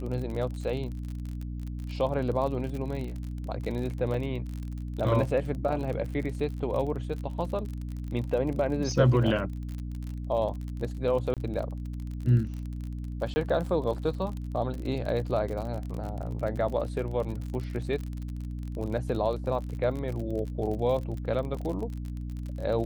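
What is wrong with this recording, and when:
surface crackle 41 per second −34 dBFS
mains hum 60 Hz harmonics 5 −35 dBFS
0:04.14: drop-out 3.3 ms
0:11.34–0:11.37: drop-out 27 ms
0:13.34–0:13.36: drop-out 20 ms

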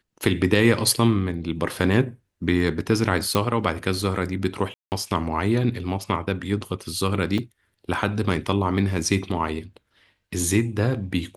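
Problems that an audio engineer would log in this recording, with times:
0:03.35: click −8 dBFS
0:04.74–0:04.92: drop-out 179 ms
0:07.38: drop-out 4.5 ms

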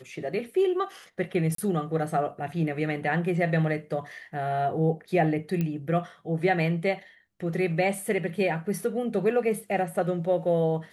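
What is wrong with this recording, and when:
0:01.55–0:01.58: drop-out 33 ms
0:05.61: click −17 dBFS

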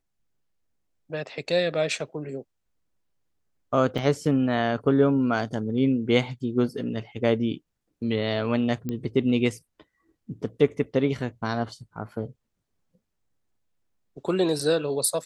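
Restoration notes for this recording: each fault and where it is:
0:03.98: drop-out 2.4 ms
0:08.89: click −18 dBFS

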